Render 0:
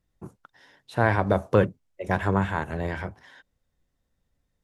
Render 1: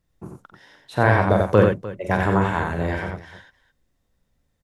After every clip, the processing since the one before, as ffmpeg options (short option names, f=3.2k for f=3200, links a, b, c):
-af "aecho=1:1:47|90|301:0.447|0.631|0.158,volume=3dB"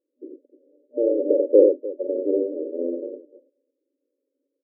-af "afftfilt=real='re*between(b*sr/4096,250,600)':imag='im*between(b*sr/4096,250,600)':win_size=4096:overlap=0.75,volume=3.5dB"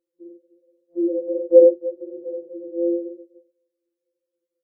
-af "afftfilt=real='re*2.83*eq(mod(b,8),0)':imag='im*2.83*eq(mod(b,8),0)':win_size=2048:overlap=0.75,volume=1dB"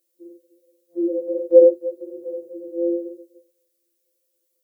-af "crystalizer=i=8.5:c=0,volume=-1.5dB"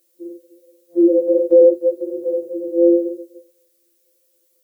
-af "alimiter=level_in=12dB:limit=-1dB:release=50:level=0:latency=1,volume=-2.5dB"